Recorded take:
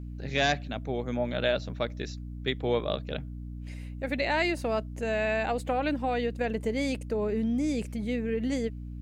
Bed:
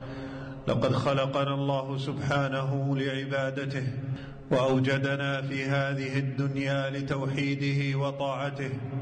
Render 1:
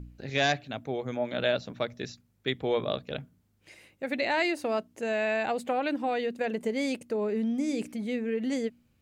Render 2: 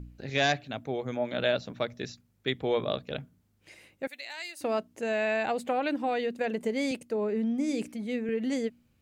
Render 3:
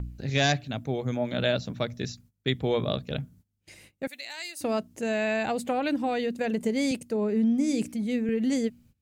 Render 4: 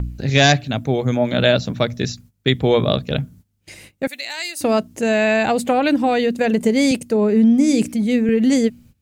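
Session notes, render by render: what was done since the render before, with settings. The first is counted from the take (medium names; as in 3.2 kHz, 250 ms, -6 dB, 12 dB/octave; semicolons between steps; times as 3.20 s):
de-hum 60 Hz, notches 5
4.07–4.61 s: differentiator; 6.91–8.29 s: three bands expanded up and down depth 40%
tone controls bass +10 dB, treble +7 dB; gate -53 dBFS, range -18 dB
trim +10.5 dB; peak limiter -1 dBFS, peak gain reduction 1 dB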